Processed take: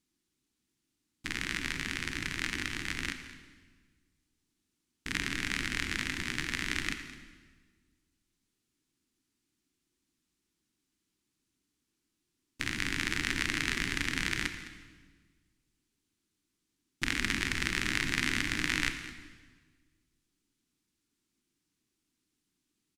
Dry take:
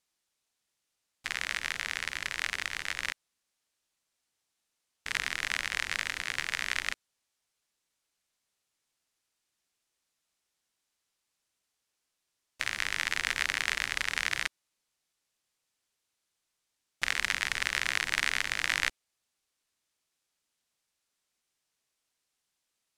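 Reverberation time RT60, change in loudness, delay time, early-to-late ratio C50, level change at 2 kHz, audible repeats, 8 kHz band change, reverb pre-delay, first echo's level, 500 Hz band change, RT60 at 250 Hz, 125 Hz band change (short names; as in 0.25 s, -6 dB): 1.5 s, -1.5 dB, 0.211 s, 8.5 dB, -2.0 dB, 1, -1.5 dB, 24 ms, -16.0 dB, +2.5 dB, 1.8 s, +11.5 dB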